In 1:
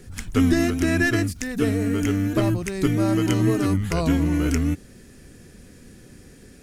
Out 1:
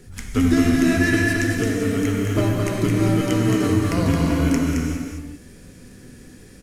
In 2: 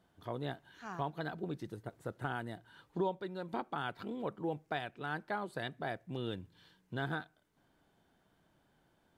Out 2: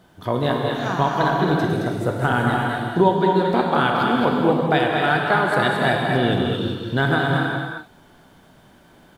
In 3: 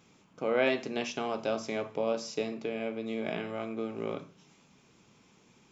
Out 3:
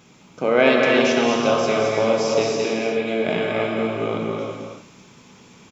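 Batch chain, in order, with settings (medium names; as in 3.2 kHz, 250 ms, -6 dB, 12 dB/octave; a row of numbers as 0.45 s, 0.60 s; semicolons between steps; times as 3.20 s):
on a send: delay 219 ms -4.5 dB; on the sum: gated-style reverb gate 430 ms flat, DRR 0 dB; normalise loudness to -20 LUFS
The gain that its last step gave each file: -1.5 dB, +17.0 dB, +10.0 dB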